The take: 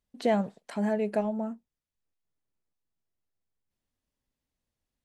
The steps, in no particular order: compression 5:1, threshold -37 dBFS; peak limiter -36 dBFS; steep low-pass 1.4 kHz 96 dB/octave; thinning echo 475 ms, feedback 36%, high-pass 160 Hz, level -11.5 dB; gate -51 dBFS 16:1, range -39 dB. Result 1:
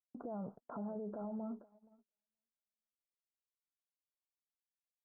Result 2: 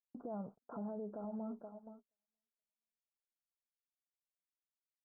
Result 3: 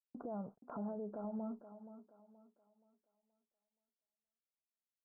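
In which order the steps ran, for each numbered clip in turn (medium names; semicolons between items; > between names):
steep low-pass > peak limiter > thinning echo > gate > compression; compression > thinning echo > gate > peak limiter > steep low-pass; compression > steep low-pass > gate > peak limiter > thinning echo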